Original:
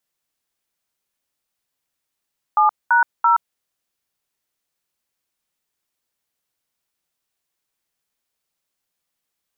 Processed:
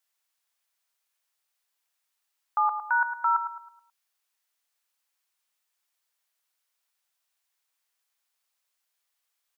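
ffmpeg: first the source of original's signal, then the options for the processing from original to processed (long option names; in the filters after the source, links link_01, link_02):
-f lavfi -i "aevalsrc='0.2*clip(min(mod(t,0.336),0.123-mod(t,0.336))/0.002,0,1)*(eq(floor(t/0.336),0)*(sin(2*PI*852*mod(t,0.336))+sin(2*PI*1209*mod(t,0.336)))+eq(floor(t/0.336),1)*(sin(2*PI*941*mod(t,0.336))+sin(2*PI*1477*mod(t,0.336)))+eq(floor(t/0.336),2)*(sin(2*PI*941*mod(t,0.336))+sin(2*PI*1336*mod(t,0.336))))':duration=1.008:sample_rate=44100"
-filter_complex "[0:a]highpass=800,alimiter=limit=-16.5dB:level=0:latency=1:release=89,asplit=2[link_01][link_02];[link_02]adelay=107,lowpass=frequency=1700:poles=1,volume=-7.5dB,asplit=2[link_03][link_04];[link_04]adelay=107,lowpass=frequency=1700:poles=1,volume=0.45,asplit=2[link_05][link_06];[link_06]adelay=107,lowpass=frequency=1700:poles=1,volume=0.45,asplit=2[link_07][link_08];[link_08]adelay=107,lowpass=frequency=1700:poles=1,volume=0.45,asplit=2[link_09][link_10];[link_10]adelay=107,lowpass=frequency=1700:poles=1,volume=0.45[link_11];[link_01][link_03][link_05][link_07][link_09][link_11]amix=inputs=6:normalize=0"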